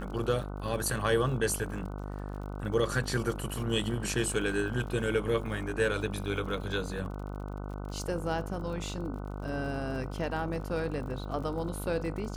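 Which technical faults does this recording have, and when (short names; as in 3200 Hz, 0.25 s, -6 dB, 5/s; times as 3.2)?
buzz 50 Hz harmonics 30 -38 dBFS
crackle 54/s -41 dBFS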